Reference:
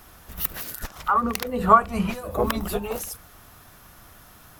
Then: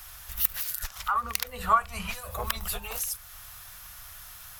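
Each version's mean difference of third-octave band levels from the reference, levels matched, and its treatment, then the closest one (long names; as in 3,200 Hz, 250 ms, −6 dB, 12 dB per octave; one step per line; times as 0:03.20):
7.5 dB: guitar amp tone stack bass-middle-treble 10-0-10
in parallel at +1 dB: downward compressor, threshold −44 dBFS, peak gain reduction 24 dB
on the sum: level +1 dB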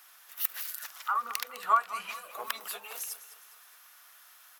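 10.0 dB: high-pass filter 1,400 Hz 12 dB per octave
on a send: repeating echo 205 ms, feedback 45%, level −14.5 dB
on the sum: level −3.5 dB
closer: first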